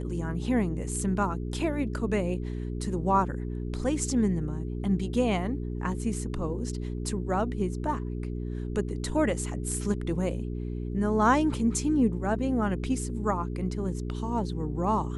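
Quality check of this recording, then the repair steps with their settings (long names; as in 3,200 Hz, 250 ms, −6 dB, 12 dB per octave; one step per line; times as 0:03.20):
mains hum 60 Hz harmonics 7 −33 dBFS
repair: hum removal 60 Hz, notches 7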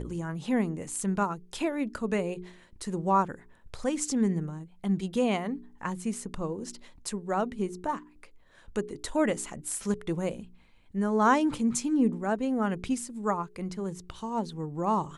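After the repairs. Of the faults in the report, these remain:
none of them is left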